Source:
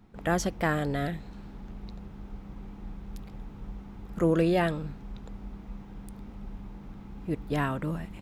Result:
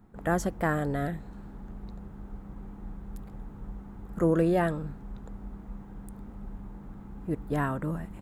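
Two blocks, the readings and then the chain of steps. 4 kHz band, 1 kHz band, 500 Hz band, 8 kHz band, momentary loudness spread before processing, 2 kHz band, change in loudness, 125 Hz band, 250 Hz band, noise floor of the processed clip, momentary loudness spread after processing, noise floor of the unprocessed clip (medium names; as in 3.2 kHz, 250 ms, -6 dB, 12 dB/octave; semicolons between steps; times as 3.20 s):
-9.0 dB, 0.0 dB, 0.0 dB, no reading, 18 LU, -1.5 dB, -0.5 dB, 0.0 dB, 0.0 dB, -46 dBFS, 18 LU, -46 dBFS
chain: high-order bell 3.6 kHz -9 dB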